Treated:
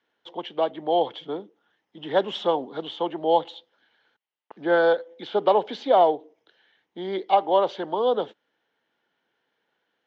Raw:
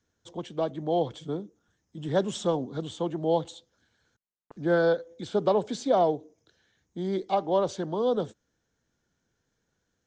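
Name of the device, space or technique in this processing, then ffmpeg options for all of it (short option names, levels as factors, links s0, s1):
phone earpiece: -af "highpass=380,equalizer=f=860:t=q:w=4:g=6,equalizer=f=2000:t=q:w=4:g=4,equalizer=f=3000:t=q:w=4:g=7,lowpass=f=3800:w=0.5412,lowpass=f=3800:w=1.3066,volume=1.68"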